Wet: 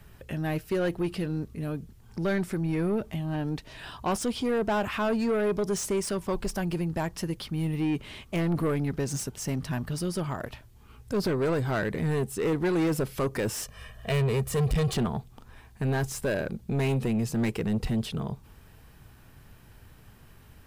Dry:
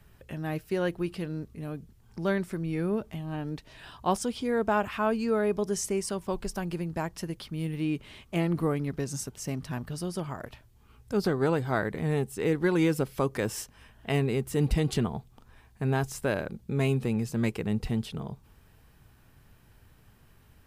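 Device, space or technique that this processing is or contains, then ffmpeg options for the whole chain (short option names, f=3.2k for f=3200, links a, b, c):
saturation between pre-emphasis and de-emphasis: -filter_complex "[0:a]asettb=1/sr,asplit=3[a][b][c];[a]atrim=end=13.624[d];[b]atrim=start=13.62:end=14.93,asetpts=PTS-STARTPTS,afade=t=in:d=0.004:c=qsin,afade=t=out:st=1.306:d=0.004:c=qsin,aecho=1:1:1.7:0.86,atrim=end_sample=57771[e];[c]atrim=start=14.926[f];[d][e]acrossfade=d=0.004:c1=hsin:c2=qsin[g];[g][f]acrossfade=d=0.004:c1=qsin:c2=hsin,highshelf=f=2.9k:g=9.5,asoftclip=type=tanh:threshold=-27dB,highshelf=f=2.9k:g=-9.5,volume=5.5dB"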